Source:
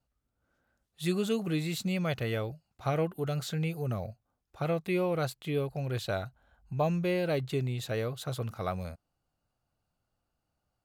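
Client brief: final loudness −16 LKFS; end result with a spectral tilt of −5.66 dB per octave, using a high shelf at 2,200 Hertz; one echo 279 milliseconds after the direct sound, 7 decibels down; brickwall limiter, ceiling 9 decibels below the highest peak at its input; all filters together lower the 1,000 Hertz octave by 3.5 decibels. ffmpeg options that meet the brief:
ffmpeg -i in.wav -af "equalizer=frequency=1000:width_type=o:gain=-6,highshelf=frequency=2200:gain=3,alimiter=level_in=3dB:limit=-24dB:level=0:latency=1,volume=-3dB,aecho=1:1:279:0.447,volume=19.5dB" out.wav

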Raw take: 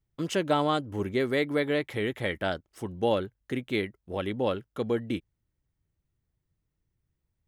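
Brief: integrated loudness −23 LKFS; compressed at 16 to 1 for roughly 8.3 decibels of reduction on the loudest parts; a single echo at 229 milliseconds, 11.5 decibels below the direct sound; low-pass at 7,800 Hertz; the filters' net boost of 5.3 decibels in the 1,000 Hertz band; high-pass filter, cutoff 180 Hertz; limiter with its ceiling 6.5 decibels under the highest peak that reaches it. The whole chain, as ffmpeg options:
ffmpeg -i in.wav -af "highpass=180,lowpass=7800,equalizer=frequency=1000:width_type=o:gain=7,acompressor=threshold=-25dB:ratio=16,alimiter=limit=-20.5dB:level=0:latency=1,aecho=1:1:229:0.266,volume=11dB" out.wav

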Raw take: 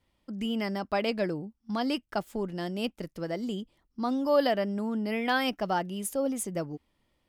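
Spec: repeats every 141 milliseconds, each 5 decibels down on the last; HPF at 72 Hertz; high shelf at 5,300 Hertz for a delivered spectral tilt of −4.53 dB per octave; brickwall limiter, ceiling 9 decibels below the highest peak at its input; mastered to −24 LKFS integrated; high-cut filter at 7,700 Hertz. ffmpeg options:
ffmpeg -i in.wav -af "highpass=72,lowpass=7700,highshelf=frequency=5300:gain=8,alimiter=limit=-21.5dB:level=0:latency=1,aecho=1:1:141|282|423|564|705|846|987:0.562|0.315|0.176|0.0988|0.0553|0.031|0.0173,volume=7dB" out.wav

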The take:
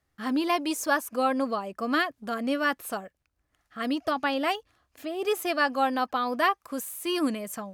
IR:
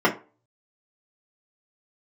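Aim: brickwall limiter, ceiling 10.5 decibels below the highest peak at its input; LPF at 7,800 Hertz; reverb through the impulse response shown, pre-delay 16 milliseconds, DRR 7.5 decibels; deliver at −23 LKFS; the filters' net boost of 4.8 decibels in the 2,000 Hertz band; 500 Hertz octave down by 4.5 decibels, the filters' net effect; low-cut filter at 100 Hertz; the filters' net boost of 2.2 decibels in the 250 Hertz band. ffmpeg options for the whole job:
-filter_complex "[0:a]highpass=100,lowpass=7800,equalizer=frequency=250:width_type=o:gain=5,equalizer=frequency=500:width_type=o:gain=-8,equalizer=frequency=2000:width_type=o:gain=6.5,alimiter=limit=-19.5dB:level=0:latency=1,asplit=2[link_01][link_02];[1:a]atrim=start_sample=2205,adelay=16[link_03];[link_02][link_03]afir=irnorm=-1:irlink=0,volume=-26dB[link_04];[link_01][link_04]amix=inputs=2:normalize=0,volume=5.5dB"

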